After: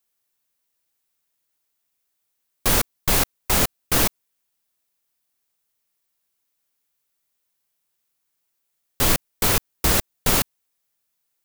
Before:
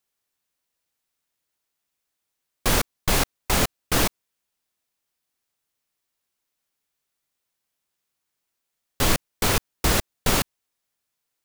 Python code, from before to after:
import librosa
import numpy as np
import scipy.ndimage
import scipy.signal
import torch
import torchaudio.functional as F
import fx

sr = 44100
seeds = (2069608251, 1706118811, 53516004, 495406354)

y = fx.high_shelf(x, sr, hz=10000.0, db=8.5)